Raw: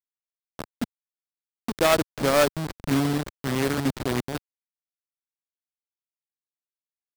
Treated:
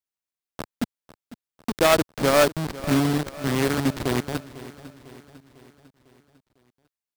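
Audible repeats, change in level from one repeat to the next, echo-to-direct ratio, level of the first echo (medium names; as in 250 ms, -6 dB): 4, -5.5 dB, -15.5 dB, -17.0 dB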